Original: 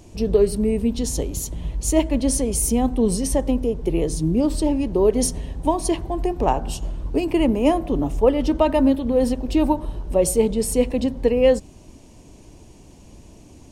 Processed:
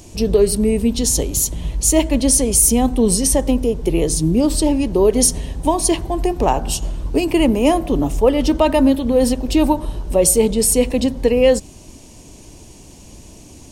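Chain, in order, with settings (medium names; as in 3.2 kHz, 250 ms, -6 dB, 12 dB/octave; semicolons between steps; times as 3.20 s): treble shelf 3.2 kHz +9 dB; in parallel at -1 dB: peak limiter -10.5 dBFS, peak gain reduction 7.5 dB; on the sum: trim -1.5 dB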